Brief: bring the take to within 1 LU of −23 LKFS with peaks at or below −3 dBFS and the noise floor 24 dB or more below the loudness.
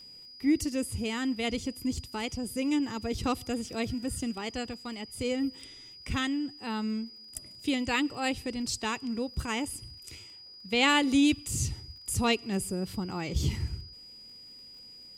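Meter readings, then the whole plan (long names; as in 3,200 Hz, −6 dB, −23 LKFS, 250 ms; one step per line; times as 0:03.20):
crackle rate 29 per second; interfering tone 4,900 Hz; level of the tone −47 dBFS; integrated loudness −31.0 LKFS; sample peak −12.5 dBFS; target loudness −23.0 LKFS
→ click removal
notch filter 4,900 Hz, Q 30
level +8 dB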